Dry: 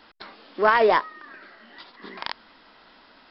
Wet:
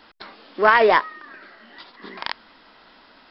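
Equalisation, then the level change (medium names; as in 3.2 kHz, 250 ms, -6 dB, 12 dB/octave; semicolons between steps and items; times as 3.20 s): dynamic bell 2.1 kHz, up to +4 dB, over -35 dBFS, Q 0.97; +2.0 dB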